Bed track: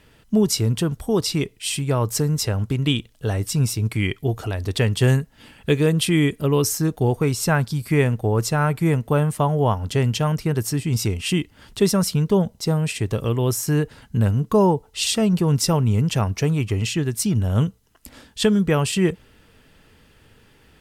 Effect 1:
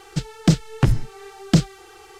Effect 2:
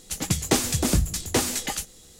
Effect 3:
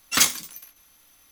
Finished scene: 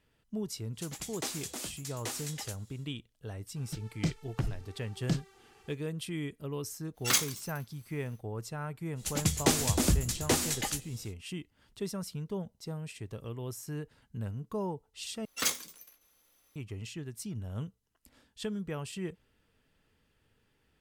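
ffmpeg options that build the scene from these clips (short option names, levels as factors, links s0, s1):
-filter_complex "[2:a]asplit=2[s0][s1];[3:a]asplit=2[s2][s3];[0:a]volume=0.119[s4];[s0]highpass=f=630:p=1[s5];[s3]equalizer=f=470:t=o:w=0.62:g=8.5[s6];[s4]asplit=2[s7][s8];[s7]atrim=end=15.254[s9];[s6]atrim=end=1.31,asetpts=PTS-STARTPTS,volume=0.266[s10];[s8]atrim=start=16.556[s11];[s5]atrim=end=2.19,asetpts=PTS-STARTPTS,volume=0.224,afade=t=in:d=0.1,afade=t=out:st=2.09:d=0.1,adelay=710[s12];[1:a]atrim=end=2.19,asetpts=PTS-STARTPTS,volume=0.168,afade=t=in:d=0.004:c=hsin,afade=t=out:st=2.186:d=0.004:c=hsin,adelay=3560[s13];[s2]atrim=end=1.31,asetpts=PTS-STARTPTS,volume=0.398,afade=t=in:d=0.1,afade=t=out:st=1.21:d=0.1,adelay=6930[s14];[s1]atrim=end=2.19,asetpts=PTS-STARTPTS,volume=0.596,afade=t=in:d=0.05,afade=t=out:st=2.14:d=0.05,adelay=8950[s15];[s9][s10]acrossfade=d=0.004:c1=hsin:c2=hsin[s16];[s16][s11]acrossfade=d=0.004:c1=hsin:c2=hsin[s17];[s17][s12][s13][s14][s15]amix=inputs=5:normalize=0"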